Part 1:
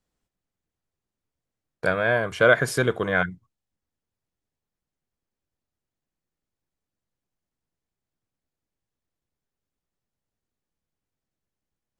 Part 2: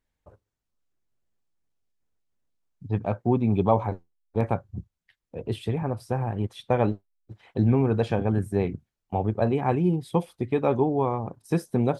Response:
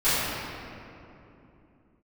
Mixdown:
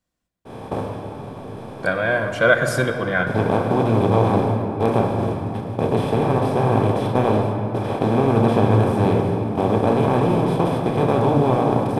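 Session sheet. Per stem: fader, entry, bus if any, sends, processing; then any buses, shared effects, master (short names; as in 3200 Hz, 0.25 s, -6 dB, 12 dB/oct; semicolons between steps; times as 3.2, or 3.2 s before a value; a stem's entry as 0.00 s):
+1.5 dB, 0.00 s, send -23 dB, notch comb 430 Hz
-5.0 dB, 0.45 s, send -18.5 dB, per-bin compression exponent 0.2; expander -21 dBFS; short-mantissa float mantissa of 8-bit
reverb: on, RT60 3.0 s, pre-delay 3 ms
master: dry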